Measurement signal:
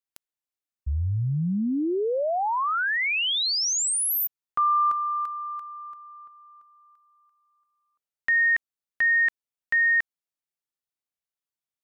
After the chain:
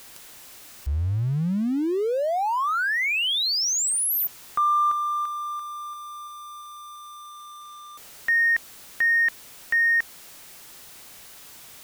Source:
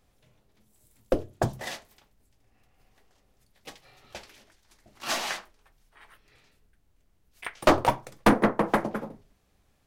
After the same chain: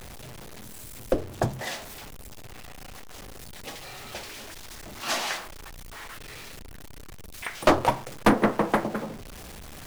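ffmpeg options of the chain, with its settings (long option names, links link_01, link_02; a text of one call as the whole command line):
ffmpeg -i in.wav -af "aeval=exprs='val(0)+0.5*0.015*sgn(val(0))':channel_layout=same" out.wav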